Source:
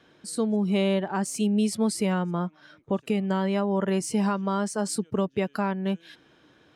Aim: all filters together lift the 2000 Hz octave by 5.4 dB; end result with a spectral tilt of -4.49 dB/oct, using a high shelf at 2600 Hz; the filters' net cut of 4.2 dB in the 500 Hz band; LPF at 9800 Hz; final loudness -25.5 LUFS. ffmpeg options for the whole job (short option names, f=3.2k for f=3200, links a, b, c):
-af "lowpass=9.8k,equalizer=f=500:t=o:g=-6,equalizer=f=2k:t=o:g=5.5,highshelf=f=2.6k:g=4.5,volume=2dB"